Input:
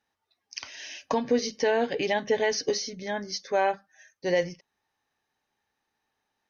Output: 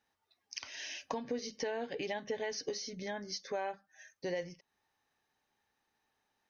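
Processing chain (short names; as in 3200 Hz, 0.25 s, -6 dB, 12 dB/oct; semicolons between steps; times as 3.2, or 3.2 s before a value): compressor 2.5:1, threshold -39 dBFS, peak gain reduction 13.5 dB; gain -1 dB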